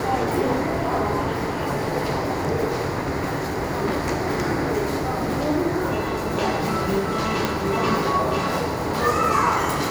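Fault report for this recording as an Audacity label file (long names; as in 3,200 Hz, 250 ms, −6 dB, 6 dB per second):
7.450000	7.450000	click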